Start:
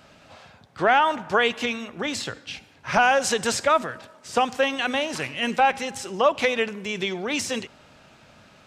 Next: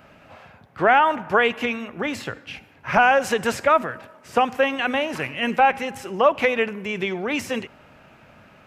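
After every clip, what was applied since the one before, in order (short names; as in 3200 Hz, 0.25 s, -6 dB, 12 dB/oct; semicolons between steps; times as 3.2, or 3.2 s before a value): band shelf 5600 Hz -10.5 dB; gain +2.5 dB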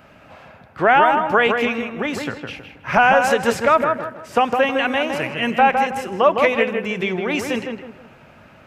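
darkening echo 0.159 s, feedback 35%, low-pass 1900 Hz, level -4 dB; gain +2 dB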